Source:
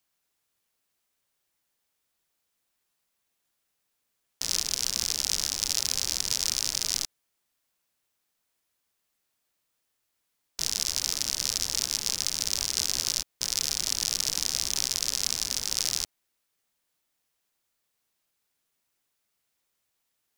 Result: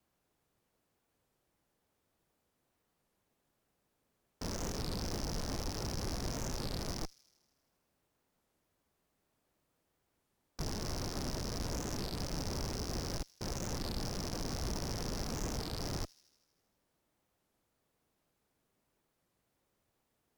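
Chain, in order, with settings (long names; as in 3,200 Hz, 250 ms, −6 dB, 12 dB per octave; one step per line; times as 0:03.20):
tilt shelving filter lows +9.5 dB, about 1,200 Hz
brickwall limiter −15.5 dBFS, peak gain reduction 4 dB
tube saturation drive 35 dB, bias 0.4
pitch vibrato 0.43 Hz 5.2 cents
delay with a high-pass on its return 79 ms, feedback 67%, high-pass 3,100 Hz, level −19 dB
wow of a warped record 33 1/3 rpm, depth 250 cents
level +4 dB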